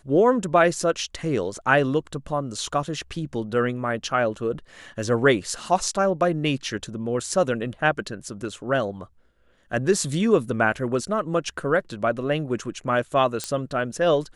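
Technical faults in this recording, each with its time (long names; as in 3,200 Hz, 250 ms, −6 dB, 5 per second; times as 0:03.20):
0:13.44: click −12 dBFS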